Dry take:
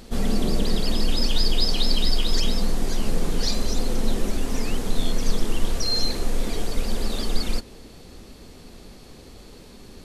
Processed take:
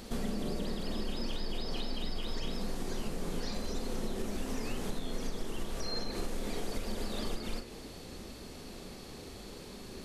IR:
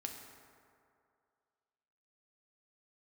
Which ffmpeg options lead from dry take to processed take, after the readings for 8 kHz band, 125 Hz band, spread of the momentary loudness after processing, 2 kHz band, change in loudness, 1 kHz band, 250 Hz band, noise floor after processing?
−12.0 dB, −12.0 dB, 9 LU, −9.0 dB, −13.0 dB, −8.0 dB, −9.5 dB, −47 dBFS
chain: -filter_complex "[0:a]acrossover=split=2600[link_01][link_02];[link_02]acompressor=threshold=-37dB:ratio=4:attack=1:release=60[link_03];[link_01][link_03]amix=inputs=2:normalize=0,lowshelf=frequency=79:gain=-7,acompressor=threshold=-30dB:ratio=10,asplit=2[link_04][link_05];[1:a]atrim=start_sample=2205,asetrate=61740,aresample=44100,adelay=39[link_06];[link_05][link_06]afir=irnorm=-1:irlink=0,volume=-1.5dB[link_07];[link_04][link_07]amix=inputs=2:normalize=0,volume=-1dB"

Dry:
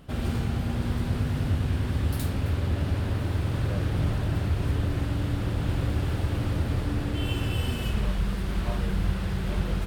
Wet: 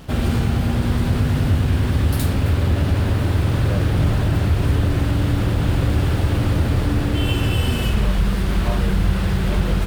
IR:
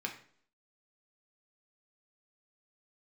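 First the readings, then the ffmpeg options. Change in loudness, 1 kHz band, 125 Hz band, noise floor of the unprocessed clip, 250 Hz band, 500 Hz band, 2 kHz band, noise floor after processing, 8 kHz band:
+8.5 dB, +9.0 dB, +8.5 dB, −30 dBFS, +8.5 dB, +9.0 dB, +9.0 dB, −21 dBFS, +9.0 dB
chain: -filter_complex "[0:a]asplit=2[link_01][link_02];[link_02]alimiter=limit=-22.5dB:level=0:latency=1,volume=-2.5dB[link_03];[link_01][link_03]amix=inputs=2:normalize=0,acrusher=bits=7:mix=0:aa=0.5,volume=5dB"

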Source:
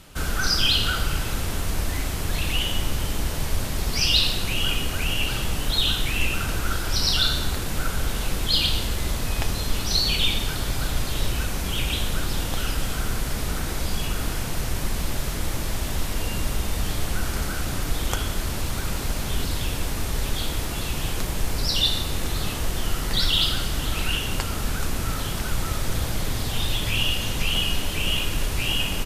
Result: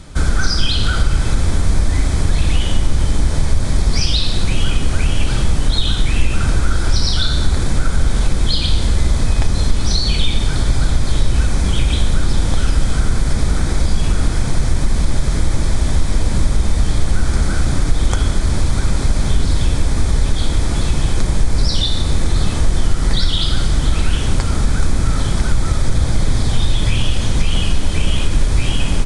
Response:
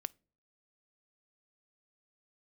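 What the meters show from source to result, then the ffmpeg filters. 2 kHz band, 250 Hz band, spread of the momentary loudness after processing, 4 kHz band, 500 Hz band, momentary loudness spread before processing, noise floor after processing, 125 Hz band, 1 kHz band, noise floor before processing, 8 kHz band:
+1.5 dB, +8.5 dB, 2 LU, +0.5 dB, +5.5 dB, 8 LU, −19 dBFS, +11.0 dB, +4.0 dB, −29 dBFS, +3.0 dB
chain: -filter_complex "[0:a]bandreject=frequency=2800:width=5.4,acompressor=threshold=-23dB:ratio=3,aresample=22050,aresample=44100,asplit=2[link_01][link_02];[1:a]atrim=start_sample=2205,lowshelf=frequency=270:gain=9.5[link_03];[link_02][link_03]afir=irnorm=-1:irlink=0,volume=18.5dB[link_04];[link_01][link_04]amix=inputs=2:normalize=0,volume=-11.5dB"

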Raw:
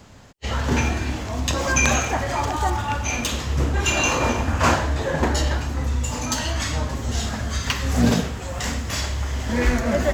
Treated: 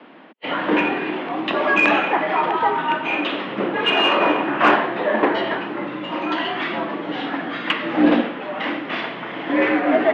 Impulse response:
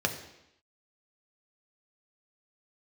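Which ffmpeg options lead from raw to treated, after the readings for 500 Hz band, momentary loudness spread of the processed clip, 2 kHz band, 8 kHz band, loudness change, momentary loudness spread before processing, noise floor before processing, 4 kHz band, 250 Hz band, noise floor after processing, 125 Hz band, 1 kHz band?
+5.5 dB, 10 LU, +5.0 dB, below −25 dB, +2.5 dB, 7 LU, −31 dBFS, +2.5 dB, +4.0 dB, −32 dBFS, −16.5 dB, +5.5 dB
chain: -af "highpass=frequency=170:width_type=q:width=0.5412,highpass=frequency=170:width_type=q:width=1.307,lowpass=frequency=3100:width_type=q:width=0.5176,lowpass=frequency=3100:width_type=q:width=0.7071,lowpass=frequency=3100:width_type=q:width=1.932,afreqshift=62,aeval=exprs='0.473*(cos(1*acos(clip(val(0)/0.473,-1,1)))-cos(1*PI/2))+0.0168*(cos(5*acos(clip(val(0)/0.473,-1,1)))-cos(5*PI/2))':channel_layout=same,volume=4dB"

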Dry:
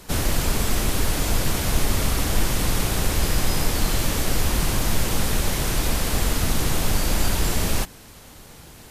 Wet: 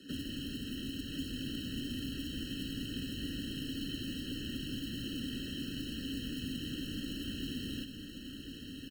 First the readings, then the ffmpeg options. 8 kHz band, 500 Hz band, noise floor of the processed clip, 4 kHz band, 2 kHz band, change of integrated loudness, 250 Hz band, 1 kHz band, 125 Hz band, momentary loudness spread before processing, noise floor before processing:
−26.0 dB, −21.5 dB, −47 dBFS, −11.5 dB, −19.0 dB, −16.0 dB, −8.5 dB, below −35 dB, −18.5 dB, 1 LU, −45 dBFS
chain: -filter_complex "[0:a]acrossover=split=3400[link_01][link_02];[link_02]acompressor=threshold=-38dB:ratio=4:attack=1:release=60[link_03];[link_01][link_03]amix=inputs=2:normalize=0,asplit=3[link_04][link_05][link_06];[link_04]bandpass=frequency=270:width_type=q:width=8,volume=0dB[link_07];[link_05]bandpass=frequency=2290:width_type=q:width=8,volume=-6dB[link_08];[link_06]bandpass=frequency=3010:width_type=q:width=8,volume=-9dB[link_09];[link_07][link_08][link_09]amix=inputs=3:normalize=0,highshelf=frequency=2900:gain=5.5,acrusher=bits=5:mode=log:mix=0:aa=0.000001,acrossover=split=140|3000[link_10][link_11][link_12];[link_11]acompressor=threshold=-48dB:ratio=6[link_13];[link_10][link_13][link_12]amix=inputs=3:normalize=0,aecho=1:1:1052:0.473,afftfilt=real='re*eq(mod(floor(b*sr/1024/640),2),0)':imag='im*eq(mod(floor(b*sr/1024/640),2),0)':win_size=1024:overlap=0.75,volume=6.5dB"

